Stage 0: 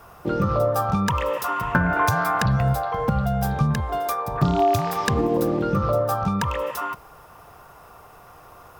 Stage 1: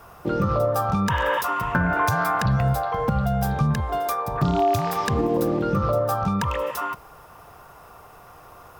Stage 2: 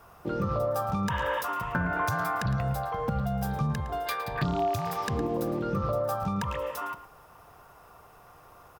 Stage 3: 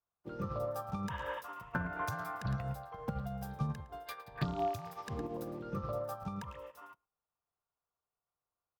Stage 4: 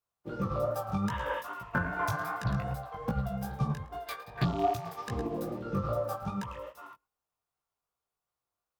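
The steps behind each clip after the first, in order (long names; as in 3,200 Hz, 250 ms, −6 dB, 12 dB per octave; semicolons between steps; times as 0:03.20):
healed spectral selection 0:01.13–0:01.39, 710–3,700 Hz before; in parallel at +2.5 dB: brickwall limiter −14.5 dBFS, peak gain reduction 9.5 dB; on the sum: level −7 dB
slap from a distant wall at 19 metres, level −13 dB; gain on a spectral selection 0:04.07–0:04.44, 1,500–5,000 Hz +12 dB; level −7 dB
expander for the loud parts 2.5 to 1, over −50 dBFS; level −4.5 dB
in parallel at −6 dB: dead-zone distortion −58.5 dBFS; on the sum: chorus effect 2.5 Hz, delay 15.5 ms, depth 5.5 ms; level +5.5 dB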